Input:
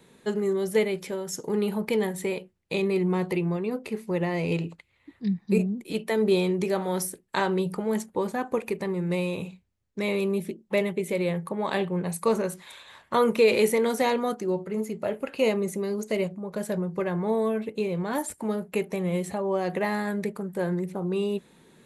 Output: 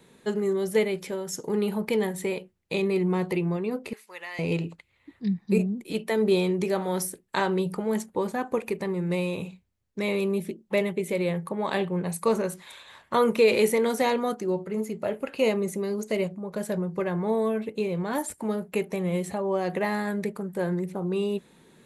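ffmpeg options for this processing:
-filter_complex "[0:a]asettb=1/sr,asplit=3[a][b][c];[a]atrim=end=3.934[d];[b]atrim=start=3.93:end=4.39,asetpts=PTS-STARTPTS,afade=t=in:d=0.004:c=qsin,afade=t=out:st=0.456:d=0.004:c=qsin,highpass=1.4k[e];[c]atrim=start=4.386[f];[d][e]acrossfade=d=0.004:c1=hsin:c2=qsin[g];[g][f]acrossfade=d=0.004:c1=qsin:c2=hsin"

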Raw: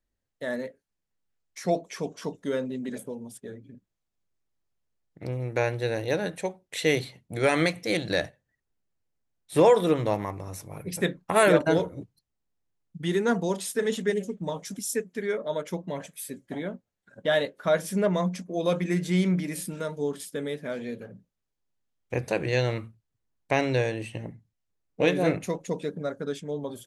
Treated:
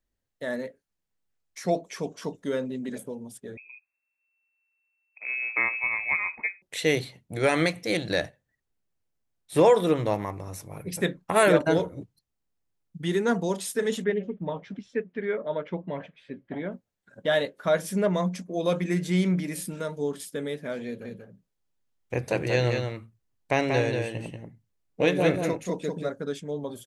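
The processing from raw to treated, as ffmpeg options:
-filter_complex "[0:a]asettb=1/sr,asplit=3[a][b][c];[a]atrim=end=3.574[d];[b]atrim=start=3.57:end=6.62,asetpts=PTS-STARTPTS,afade=t=in:d=0.004:c=qsin,afade=t=out:st=3.046:d=0.004:c=qsin,lowpass=f=2.3k:t=q:w=0.5098,lowpass=f=2.3k:t=q:w=0.6013,lowpass=f=2.3k:t=q:w=0.9,lowpass=f=2.3k:t=q:w=2.563,afreqshift=-2700[e];[c]atrim=start=6.616[f];[d][e]acrossfade=d=0.004:c1=hsin:c2=qsin[g];[g][f]acrossfade=d=0.004:c1=qsin:c2=hsin,asettb=1/sr,asplit=3[h][i][j];[h]atrim=end=14.044[k];[i]atrim=start=14.04:end=16.72,asetpts=PTS-STARTPTS,afade=t=in:d=0.004:c=qsin,afade=t=out:st=2.676:d=0.004:c=qsin,lowpass=f=3k:w=0.5412,lowpass=f=3k:w=1.3066[l];[j]atrim=start=16.716[m];[k][l]acrossfade=d=0.004:c1=hsin:c2=qsin[n];[n][m]acrossfade=d=0.004:c1=qsin:c2=hsin,asplit=3[o][p][q];[o]afade=t=out:st=21.04:d=0.02[r];[p]aecho=1:1:186:0.562,afade=t=in:st=21.04:d=0.02,afade=t=out:st=26.09:d=0.02[s];[q]afade=t=in:st=26.09:d=0.02[t];[r][s][t]amix=inputs=3:normalize=0"

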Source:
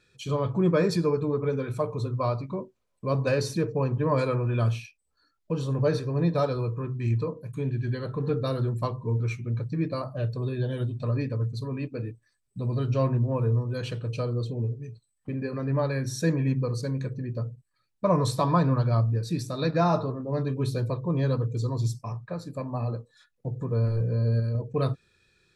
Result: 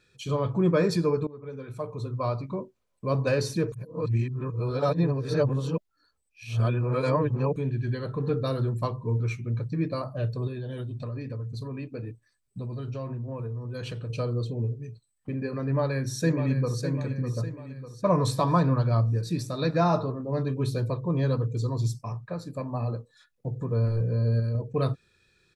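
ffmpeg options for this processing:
-filter_complex "[0:a]asettb=1/sr,asplit=3[a][b][c];[a]atrim=end=10.474[d];[b]atrim=start=10.47:end=14.1,asetpts=PTS-STARTPTS,afade=t=in:d=0.004:c=qsin,afade=t=out:st=3.626:d=0.004:c=qsin,acompressor=threshold=-31dB:ratio=6:attack=3.2:release=140:knee=1:detection=peak[e];[c]atrim=start=14.096[f];[d][e]acrossfade=d=0.004:c1=hsin:c2=qsin[g];[g][f]acrossfade=d=0.004:c1=qsin:c2=hsin,asplit=2[h][i];[i]afade=t=in:st=15.63:d=0.01,afade=t=out:st=16.82:d=0.01,aecho=0:1:600|1200|1800|2400|3000|3600:0.354813|0.177407|0.0887033|0.0443517|0.0221758|0.0110879[j];[h][j]amix=inputs=2:normalize=0,asplit=4[k][l][m][n];[k]atrim=end=1.27,asetpts=PTS-STARTPTS,afade=t=out:st=1.266:d=0.004:c=hsin:silence=0.0944061[o];[l]atrim=start=1.27:end=3.722,asetpts=PTS-STARTPTS,afade=t=in:d=1.22:silence=0.0944061[p];[m]atrim=start=3.718:end=7.562,asetpts=PTS-STARTPTS,areverse[q];[n]atrim=start=7.558[r];[o][p]concat=n=2:v=0:a=1[s];[s][q]acrossfade=d=0.004:c1=hsin:c2=hsin[t];[t][r]acrossfade=d=0.004:c1=hsin:c2=hsin"

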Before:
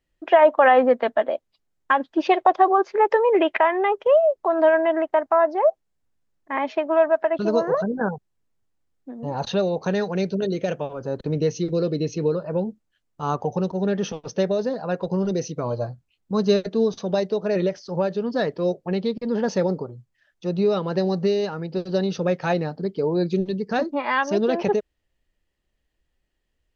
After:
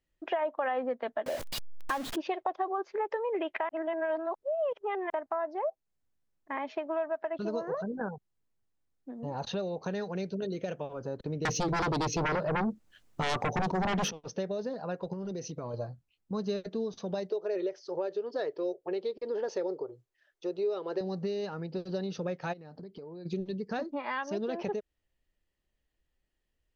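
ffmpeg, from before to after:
-filter_complex "[0:a]asettb=1/sr,asplit=3[a][b][c];[a]atrim=end=1.264[d];[b]atrim=start=1.26:end=2.16,asetpts=PTS-STARTPTS,afade=t=in:d=0.004:c=qsin,afade=t=out:st=0.896:d=0.004:c=qsin,aeval=exprs='val(0)+0.5*0.0841*sgn(val(0))':c=same[e];[c]atrim=start=2.156[f];[d][e]acrossfade=d=0.004:c1=hsin:c2=qsin[g];[g][f]acrossfade=d=0.004:c1=qsin:c2=hsin,asettb=1/sr,asplit=3[h][i][j];[h]atrim=end=11.454[k];[i]atrim=start=11.45:end=14.11,asetpts=PTS-STARTPTS,afade=t=in:d=0.004:c=qsin,afade=t=out:st=2.656:d=0.004:c=qsin,aeval=exprs='0.299*sin(PI/2*5.01*val(0)/0.299)':c=same[l];[j]atrim=start=14.106[m];[k][l]acrossfade=d=0.004:c1=hsin:c2=qsin[n];[n][m]acrossfade=d=0.004:c1=qsin:c2=hsin,asettb=1/sr,asplit=3[o][p][q];[o]atrim=end=15.134[r];[p]atrim=start=15.13:end=15.74,asetpts=PTS-STARTPTS,afade=t=in:d=0.004:c=qsin,afade=t=out:st=0.606:d=0.004:c=qsin,acompressor=threshold=-28dB:ratio=3:attack=3.2:release=140:knee=1:detection=peak[s];[q]atrim=start=15.736[t];[r][s]acrossfade=d=0.004:c1=hsin:c2=qsin[u];[u][t]acrossfade=d=0.004:c1=qsin:c2=hsin,asettb=1/sr,asplit=3[v][w][x];[v]atrim=end=17.304[y];[w]atrim=start=17.3:end=21.01,asetpts=PTS-STARTPTS,afade=t=in:d=0.004:c=qsin,afade=t=out:st=3.706:d=0.004:c=qsin,lowshelf=f=280:t=q:w=3:g=-10[z];[x]atrim=start=21.006[aa];[y][z]acrossfade=d=0.004:c1=hsin:c2=qsin[ab];[ab][aa]acrossfade=d=0.004:c1=qsin:c2=hsin,asplit=3[ac][ad][ae];[ac]afade=t=out:st=22.52:d=0.02[af];[ad]acompressor=threshold=-35dB:ratio=16:attack=3.2:release=140:knee=1:detection=peak,afade=t=in:st=22.52:d=0.02,afade=t=out:st=23.25:d=0.02[ag];[ae]afade=t=in:st=23.25:d=0.02[ah];[af][ag][ah]amix=inputs=3:normalize=0,asplit=3[ai][aj][ak];[ai]atrim=end=3.692[al];[aj]atrim=start=3.688:end=5.102,asetpts=PTS-STARTPTS,areverse[am];[ak]atrim=start=5.098[an];[al][am]acrossfade=d=0.004:c1=hsin:c2=hsin[ao];[ao][an]acrossfade=d=0.004:c1=hsin:c2=hsin,acompressor=threshold=-27dB:ratio=2.5,volume=-6dB"

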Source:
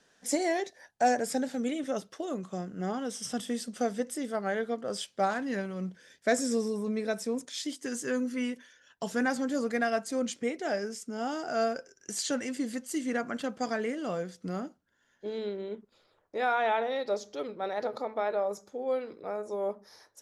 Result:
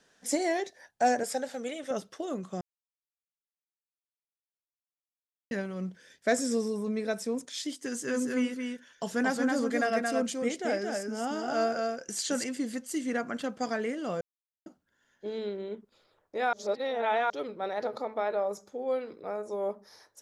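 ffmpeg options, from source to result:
-filter_complex "[0:a]asettb=1/sr,asplit=3[a][b][c];[a]atrim=end=1.234[d];[b]atrim=start=1.23:end=1.91,asetpts=PTS-STARTPTS,afade=t=in:d=0.004:c=qsin,afade=t=out:st=0.676:d=0.004:c=qsin,lowshelf=f=410:t=q:w=1.5:g=-7.5[e];[c]atrim=start=1.906[f];[d][e]acrossfade=d=0.004:c1=hsin:c2=qsin[g];[g][f]acrossfade=d=0.004:c1=qsin:c2=hsin,asettb=1/sr,asplit=3[h][i][j];[h]atrim=end=7.864[k];[i]atrim=start=7.86:end=12.44,asetpts=PTS-STARTPTS,afade=t=in:d=0.004:c=qsin,afade=t=out:st=4.576:d=0.004:c=qsin,aecho=1:1:224:0.668,atrim=end_sample=201978[l];[j]atrim=start=12.436[m];[k][l]acrossfade=d=0.004:c1=hsin:c2=qsin[n];[n][m]acrossfade=d=0.004:c1=qsin:c2=hsin,asplit=7[o][p][q][r][s][t][u];[o]atrim=end=2.61,asetpts=PTS-STARTPTS,afade=t=out:st=2.606:d=0.004:c=hsin[v];[p]atrim=start=2.61:end=5.51,asetpts=PTS-STARTPTS,volume=0[w];[q]atrim=start=5.51:end=14.21,asetpts=PTS-STARTPTS,afade=t=in:d=0.004:c=hsin,afade=t=out:st=8.696:d=0.004:c=hsin[x];[r]atrim=start=14.21:end=14.66,asetpts=PTS-STARTPTS,volume=0[y];[s]atrim=start=14.66:end=16.532,asetpts=PTS-STARTPTS,afade=t=in:d=0.004:c=hsin[z];[t]atrim=start=16.528:end=17.302,asetpts=PTS-STARTPTS,areverse[aa];[u]atrim=start=17.298[ab];[v][w][x][y][z]concat=n=5:v=0:a=1[ac];[ac][aa]acrossfade=d=0.004:c1=hsin:c2=hsin[ad];[ad][ab]acrossfade=d=0.004:c1=hsin:c2=hsin"

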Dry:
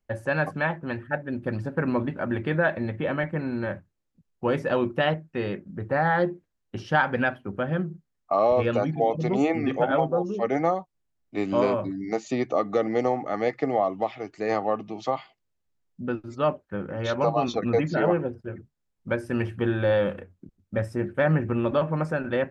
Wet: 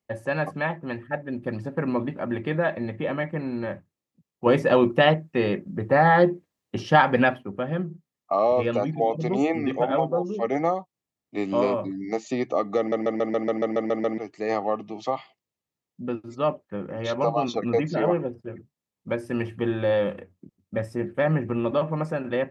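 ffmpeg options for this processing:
-filter_complex "[0:a]asplit=13[a][b][c][d][e][f][g][h][i][j][k][l][m];[a]atrim=end=4.462[n];[b]atrim=start=4.458:end=7.432,asetpts=PTS-STARTPTS,volume=6dB[o];[c]atrim=start=7.428:end=12.922[p];[d]atrim=start=12.778:end=12.922[q];[e]atrim=start=12.778:end=12.922[r];[f]atrim=start=12.778:end=12.922[s];[g]atrim=start=12.778:end=12.922[t];[h]atrim=start=12.778:end=12.922[u];[i]atrim=start=12.778:end=12.922[v];[j]atrim=start=12.778:end=12.922[w];[k]atrim=start=12.778:end=12.922[x];[l]atrim=start=12.778:end=12.922[y];[m]atrim=start=14.178[z];[n][o]acrossfade=d=0.004:c1=hsin:c2=hsin[aa];[aa][p]acrossfade=d=0.004:c1=hsin:c2=hsin[ab];[ab][q]acrossfade=d=0.004:c1=hsin:c2=hsin[ac];[ac][r]acrossfade=d=0.004:c1=hsin:c2=hsin[ad];[ad][s]acrossfade=d=0.004:c1=hsin:c2=hsin[ae];[ae][t]acrossfade=d=0.004:c1=hsin:c2=hsin[af];[af][u]acrossfade=d=0.004:c1=hsin:c2=hsin[ag];[ag][v]acrossfade=d=0.004:c1=hsin:c2=hsin[ah];[ah][w]acrossfade=d=0.004:c1=hsin:c2=hsin[ai];[ai][x]acrossfade=d=0.004:c1=hsin:c2=hsin[aj];[aj][y]acrossfade=d=0.004:c1=hsin:c2=hsin[ak];[ak][z]acrossfade=d=0.004:c1=hsin:c2=hsin,highpass=120,bandreject=f=1.5k:w=6.1"

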